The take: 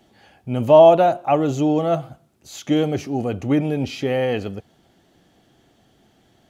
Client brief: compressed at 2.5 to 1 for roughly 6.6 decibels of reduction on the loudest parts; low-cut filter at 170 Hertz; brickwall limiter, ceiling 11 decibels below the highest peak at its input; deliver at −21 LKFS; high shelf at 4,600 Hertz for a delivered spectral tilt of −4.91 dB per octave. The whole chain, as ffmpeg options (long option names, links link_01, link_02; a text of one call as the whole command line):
ffmpeg -i in.wav -af "highpass=170,highshelf=frequency=4600:gain=8.5,acompressor=threshold=-16dB:ratio=2.5,volume=6.5dB,alimiter=limit=-12dB:level=0:latency=1" out.wav